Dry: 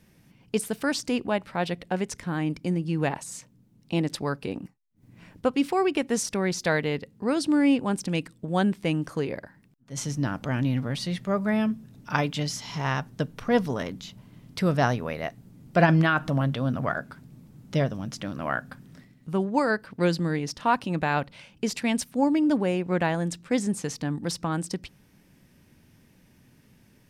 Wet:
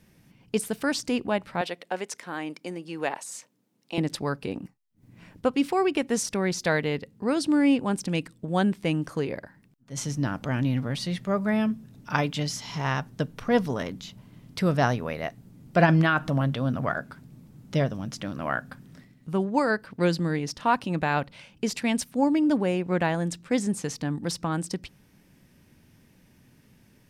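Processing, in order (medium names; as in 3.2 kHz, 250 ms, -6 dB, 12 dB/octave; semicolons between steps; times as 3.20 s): 1.61–3.98 s: high-pass 410 Hz 12 dB/octave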